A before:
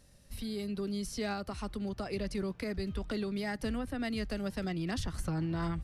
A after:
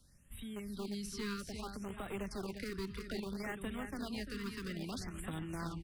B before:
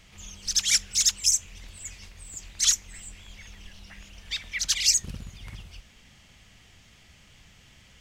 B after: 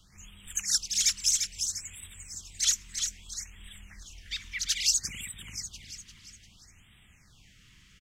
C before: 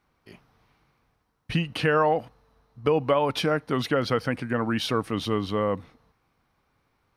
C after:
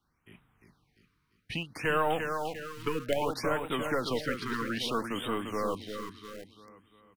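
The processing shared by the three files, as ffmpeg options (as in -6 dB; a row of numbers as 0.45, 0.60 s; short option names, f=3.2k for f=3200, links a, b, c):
-filter_complex "[0:a]acrossover=split=260[a][b];[a]acompressor=threshold=-44dB:ratio=2.5[c];[c][b]amix=inputs=2:normalize=0,aecho=1:1:347|694|1041|1388|1735|2082:0.501|0.231|0.106|0.0488|0.0224|0.0103,acrossover=split=400|830[d][e][f];[e]acrusher=bits=4:dc=4:mix=0:aa=0.000001[g];[d][g][f]amix=inputs=3:normalize=0,afftfilt=real='re*(1-between(b*sr/1024,630*pow(5500/630,0.5+0.5*sin(2*PI*0.61*pts/sr))/1.41,630*pow(5500/630,0.5+0.5*sin(2*PI*0.61*pts/sr))*1.41))':imag='im*(1-between(b*sr/1024,630*pow(5500/630,0.5+0.5*sin(2*PI*0.61*pts/sr))/1.41,630*pow(5500/630,0.5+0.5*sin(2*PI*0.61*pts/sr))*1.41))':win_size=1024:overlap=0.75,volume=-4dB"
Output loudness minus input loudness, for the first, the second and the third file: -6.0, -5.5, -6.5 LU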